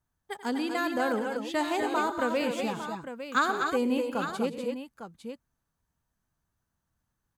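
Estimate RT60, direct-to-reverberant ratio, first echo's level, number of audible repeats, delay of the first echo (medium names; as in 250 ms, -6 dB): no reverb, no reverb, -15.0 dB, 5, 89 ms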